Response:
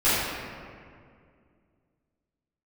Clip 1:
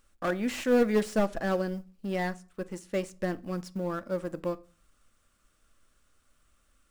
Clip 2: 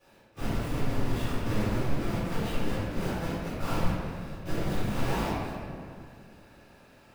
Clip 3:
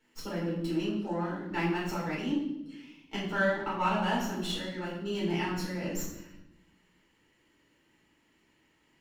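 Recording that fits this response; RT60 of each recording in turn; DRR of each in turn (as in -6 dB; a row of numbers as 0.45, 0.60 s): 2; 0.40, 2.2, 0.85 s; 11.5, -16.0, -6.5 dB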